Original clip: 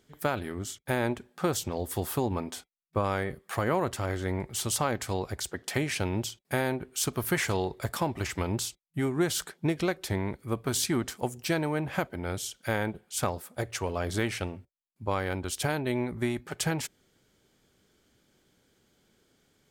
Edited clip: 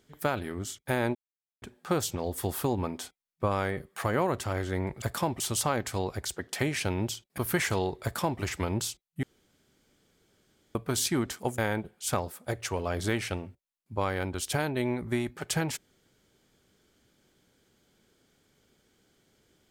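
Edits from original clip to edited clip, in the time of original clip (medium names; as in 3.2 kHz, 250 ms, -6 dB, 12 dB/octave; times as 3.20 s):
1.15 s: insert silence 0.47 s
6.53–7.16 s: delete
7.81–8.19 s: copy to 4.55 s
9.01–10.53 s: room tone
11.36–12.68 s: delete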